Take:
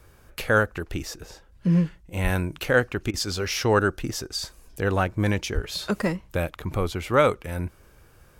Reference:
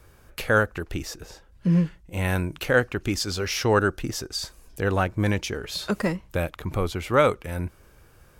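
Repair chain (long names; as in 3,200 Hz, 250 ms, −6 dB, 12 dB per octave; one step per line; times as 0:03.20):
high-pass at the plosives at 0:02.23/0:05.54
repair the gap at 0:03.11, 27 ms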